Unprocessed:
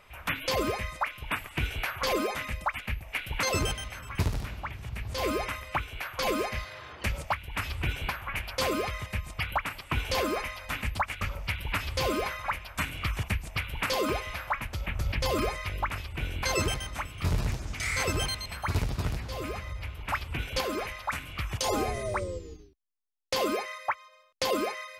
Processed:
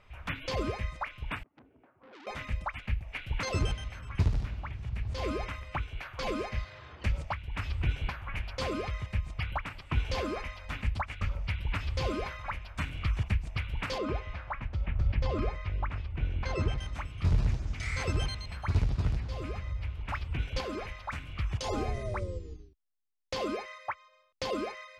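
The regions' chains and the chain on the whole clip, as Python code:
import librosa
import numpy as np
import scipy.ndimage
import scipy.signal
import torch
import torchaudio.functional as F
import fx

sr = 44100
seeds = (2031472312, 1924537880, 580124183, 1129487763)

y = fx.chain(x, sr, fx.ladder_bandpass(hz=310.0, resonance_pct=50),
    fx.transformer_sat(knee_hz=2900.0), at=(1.43, 2.27))
y = fx.chain(y, sr, fx.lowpass(hz=7100.0, slope=12),
    fx.high_shelf(hz=3300.0, db=-10.0), at=(13.98, 16.78))
y = scipy.signal.sosfilt(scipy.signal.butter(2, 6000.0, 'lowpass', fs=sr, output='sos'), y)
y = fx.low_shelf(y, sr, hz=190.0, db=10.5)
y = y * 10.0 ** (-6.5 / 20.0)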